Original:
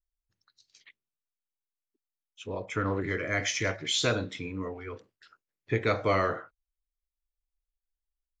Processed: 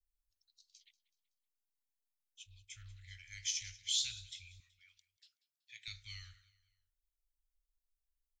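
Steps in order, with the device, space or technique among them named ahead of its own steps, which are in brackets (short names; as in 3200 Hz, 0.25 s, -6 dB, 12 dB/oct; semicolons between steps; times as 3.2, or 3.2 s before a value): inverse Chebyshev band-stop 250–760 Hz, stop band 80 dB; smiley-face EQ (low shelf 190 Hz +6.5 dB; bell 410 Hz -3.5 dB 2.5 oct; high shelf 7500 Hz +5 dB); 4.6–5.88 HPF 450 Hz 12 dB/oct; feedback echo 0.188 s, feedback 43%, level -20 dB; gain -5 dB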